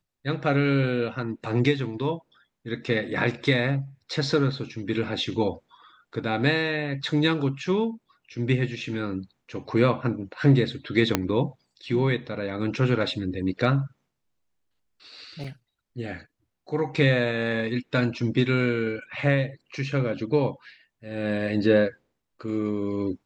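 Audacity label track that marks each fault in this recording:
11.150000	11.150000	pop -5 dBFS
15.440000	15.440000	gap 4.4 ms

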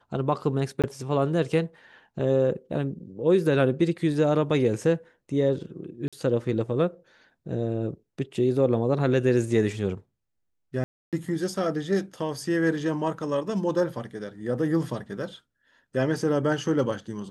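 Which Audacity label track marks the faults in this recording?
0.820000	0.840000	gap 17 ms
6.080000	6.130000	gap 46 ms
10.840000	11.130000	gap 0.287 s

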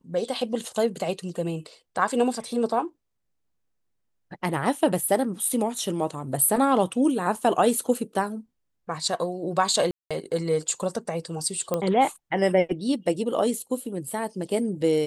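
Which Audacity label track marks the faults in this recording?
5.490000	5.490000	gap 3 ms
9.910000	10.110000	gap 0.196 s
11.740000	11.740000	pop -12 dBFS

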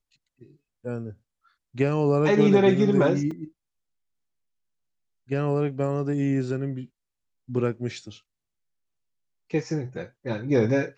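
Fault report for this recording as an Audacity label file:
3.310000	3.310000	gap 3.9 ms

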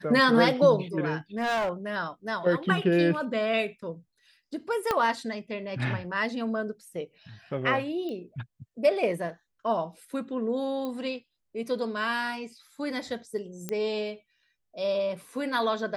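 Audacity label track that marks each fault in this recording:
1.370000	1.700000	clipped -24 dBFS
4.910000	4.910000	pop -12 dBFS
8.090000	8.090000	pop -26 dBFS
10.850000	10.850000	pop -22 dBFS
13.690000	13.690000	pop -17 dBFS

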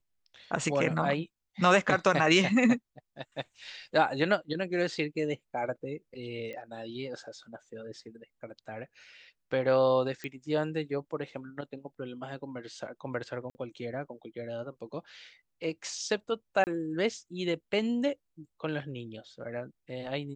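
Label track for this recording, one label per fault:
6.530000	6.530000	pop -29 dBFS
10.240000	10.240000	pop -23 dBFS
13.500000	13.550000	gap 50 ms
16.640000	16.670000	gap 29 ms

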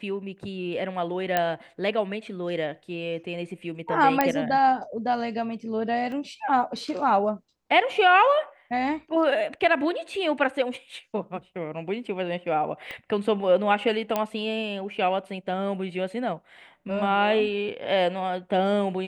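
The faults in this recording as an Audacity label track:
1.370000	1.370000	pop -9 dBFS
4.210000	4.210000	pop -7 dBFS
6.120000	6.120000	gap 2 ms
12.910000	12.910000	pop -22 dBFS
14.160000	14.160000	pop -11 dBFS

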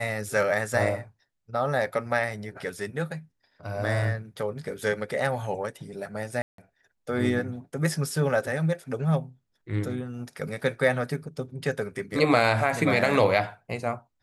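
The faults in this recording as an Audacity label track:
6.420000	6.580000	gap 0.163 s

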